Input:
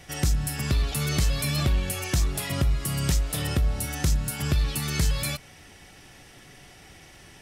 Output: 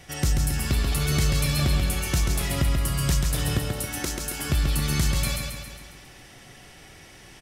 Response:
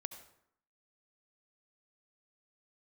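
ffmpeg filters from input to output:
-filter_complex "[0:a]asettb=1/sr,asplit=3[link_01][link_02][link_03];[link_01]atrim=end=3.584[link_04];[link_02]atrim=start=3.58:end=4.5,asetpts=PTS-STARTPTS,afade=type=in:duration=0.004:curve=qsin,afade=type=out:start_time=0.916:duration=0.004:curve=qsin,lowshelf=frequency=210:width_type=q:width=1.5:gain=-12[link_05];[link_03]atrim=start=4.496[link_06];[link_04][link_05]acrossfade=duration=0.004:curve1=hsin:curve2=qsin[link_07];[link_07][link_06]acrossfade=duration=0.004:curve1=qsin:curve2=hsin,aecho=1:1:136|272|408|544|680|816|952:0.631|0.347|0.191|0.105|0.0577|0.0318|0.0175"

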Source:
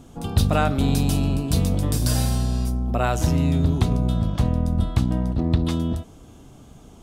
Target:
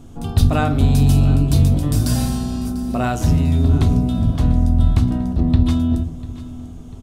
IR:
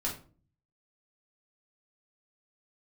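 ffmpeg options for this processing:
-filter_complex "[0:a]aecho=1:1:695|1390|2085|2780:0.141|0.0692|0.0339|0.0166,asplit=2[link_01][link_02];[1:a]atrim=start_sample=2205,lowshelf=frequency=360:gain=11[link_03];[link_02][link_03]afir=irnorm=-1:irlink=0,volume=-11dB[link_04];[link_01][link_04]amix=inputs=2:normalize=0,volume=-2dB"

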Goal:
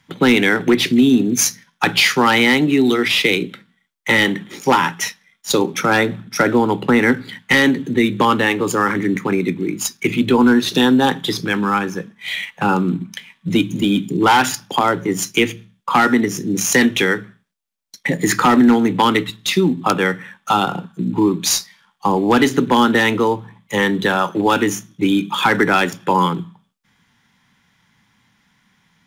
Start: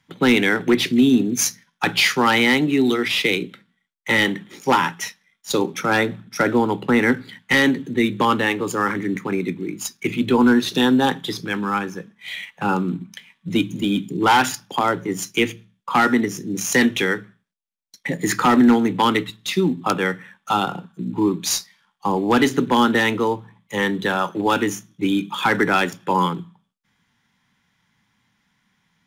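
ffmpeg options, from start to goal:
ffmpeg -i in.wav -af "acompressor=threshold=-24dB:ratio=1.5,volume=7dB" out.wav

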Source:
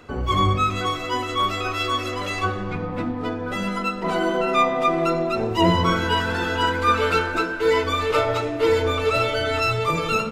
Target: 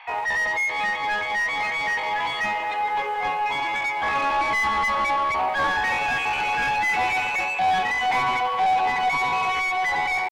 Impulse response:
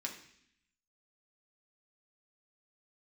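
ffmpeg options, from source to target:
-filter_complex "[0:a]highpass=frequency=330:width=0.5412,highpass=frequency=330:width=1.3066,equalizer=frequency=340:width_type=q:width=4:gain=-5,equalizer=frequency=540:width_type=q:width=4:gain=9,equalizer=frequency=810:width_type=q:width=4:gain=-7,equalizer=frequency=1300:width_type=q:width=4:gain=4,equalizer=frequency=1800:width_type=q:width=4:gain=7,lowpass=frequency=2000:width=0.5412,lowpass=frequency=2000:width=1.3066,asetrate=74167,aresample=44100,atempo=0.594604,acrossover=split=730[link_01][link_02];[link_01]acrusher=bits=7:mix=0:aa=0.000001[link_03];[link_03][link_02]amix=inputs=2:normalize=0,asplit=2[link_04][link_05];[link_05]highpass=frequency=720:poles=1,volume=23dB,asoftclip=type=tanh:threshold=-5.5dB[link_06];[link_04][link_06]amix=inputs=2:normalize=0,lowpass=frequency=1300:poles=1,volume=-6dB,bandreject=frequency=600:width=12,volume=-7dB"

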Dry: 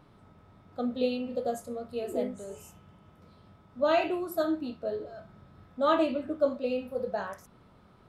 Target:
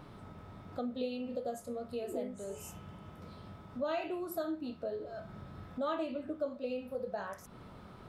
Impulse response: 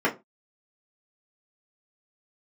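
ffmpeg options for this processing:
-af "acompressor=threshold=-48dB:ratio=2.5,volume=6.5dB"

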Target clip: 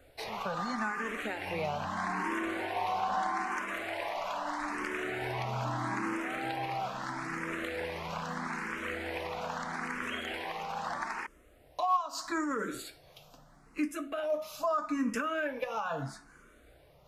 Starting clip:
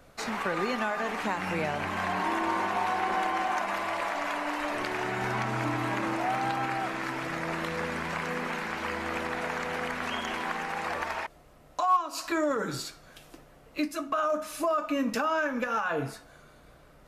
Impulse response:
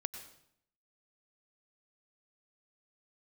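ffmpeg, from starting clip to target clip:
-filter_complex "[0:a]asplit=2[link_01][link_02];[link_02]afreqshift=0.78[link_03];[link_01][link_03]amix=inputs=2:normalize=1,volume=-1.5dB"

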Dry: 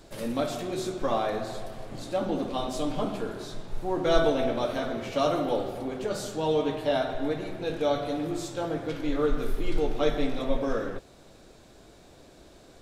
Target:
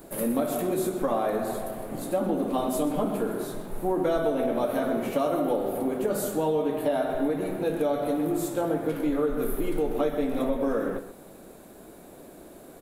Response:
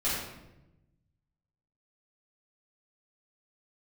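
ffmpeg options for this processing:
-filter_complex "[0:a]firequalizer=gain_entry='entry(100,0);entry(190,11);entry(3300,-5);entry(5400,-9);entry(11000,13)':delay=0.05:min_phase=1,acompressor=threshold=-19dB:ratio=6,highshelf=frequency=2600:gain=8,asplit=2[link_01][link_02];[link_02]adelay=128.3,volume=-12dB,highshelf=frequency=4000:gain=-2.89[link_03];[link_01][link_03]amix=inputs=2:normalize=0,volume=-3.5dB"

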